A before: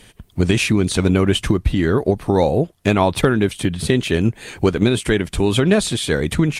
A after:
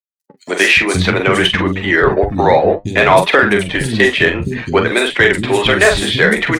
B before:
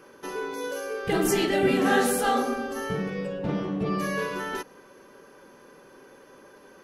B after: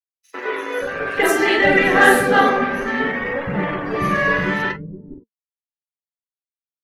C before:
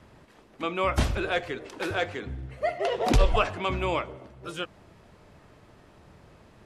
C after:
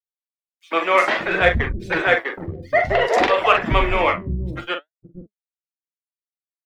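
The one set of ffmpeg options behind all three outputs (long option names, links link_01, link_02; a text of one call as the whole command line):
ffmpeg -i in.wav -filter_complex "[0:a]acrossover=split=430|1700[link_01][link_02][link_03];[link_01]acompressor=threshold=-27dB:ratio=5[link_04];[link_04][link_02][link_03]amix=inputs=3:normalize=0,aeval=exprs='val(0)*gte(abs(val(0)),0.0251)':channel_layout=same,asplit=2[link_05][link_06];[link_06]adelay=44,volume=-6dB[link_07];[link_05][link_07]amix=inputs=2:normalize=0,afftdn=noise_reduction=25:noise_floor=-41,acrossover=split=270|5000[link_08][link_09][link_10];[link_09]adelay=100[link_11];[link_08]adelay=570[link_12];[link_12][link_11][link_10]amix=inputs=3:normalize=0,adynamicequalizer=threshold=0.00398:dfrequency=100:dqfactor=4.1:tfrequency=100:tqfactor=4.1:attack=5:release=100:ratio=0.375:range=1.5:mode=cutabove:tftype=bell,flanger=delay=3.2:depth=9.6:regen=65:speed=0.58:shape=triangular,equalizer=frequency=1900:width_type=o:width=0.41:gain=9,asplit=2[link_13][link_14];[link_14]adynamicsmooth=sensitivity=2.5:basefreq=4300,volume=0.5dB[link_15];[link_13][link_15]amix=inputs=2:normalize=0,apsyclip=9dB,volume=-1.5dB" out.wav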